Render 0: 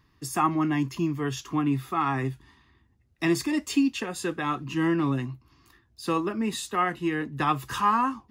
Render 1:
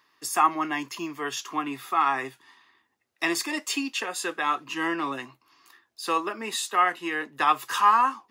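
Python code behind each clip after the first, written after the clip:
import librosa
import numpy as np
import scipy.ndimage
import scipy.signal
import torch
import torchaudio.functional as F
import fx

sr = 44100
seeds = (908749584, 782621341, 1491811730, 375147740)

y = scipy.signal.sosfilt(scipy.signal.butter(2, 590.0, 'highpass', fs=sr, output='sos'), x)
y = y * librosa.db_to_amplitude(4.5)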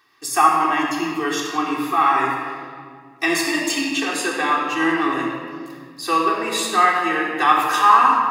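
y = fx.room_shoebox(x, sr, seeds[0], volume_m3=3400.0, walls='mixed', distance_m=3.6)
y = y * librosa.db_to_amplitude(2.5)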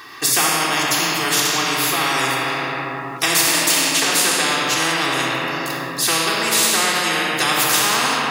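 y = fx.spectral_comp(x, sr, ratio=4.0)
y = y * librosa.db_to_amplitude(-1.0)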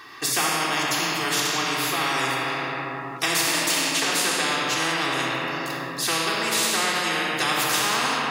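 y = fx.high_shelf(x, sr, hz=8300.0, db=-6.5)
y = y * librosa.db_to_amplitude(-4.5)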